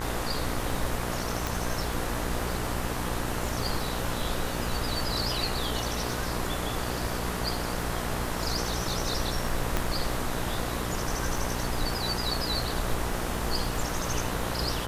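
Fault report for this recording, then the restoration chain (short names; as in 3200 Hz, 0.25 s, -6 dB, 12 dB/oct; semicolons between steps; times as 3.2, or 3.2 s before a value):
buzz 60 Hz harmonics 33 -34 dBFS
crackle 34/s -34 dBFS
1.47 pop
9.77 pop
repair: de-click; de-hum 60 Hz, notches 33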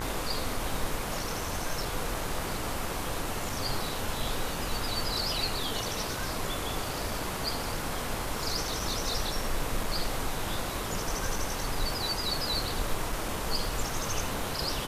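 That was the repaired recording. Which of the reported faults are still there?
none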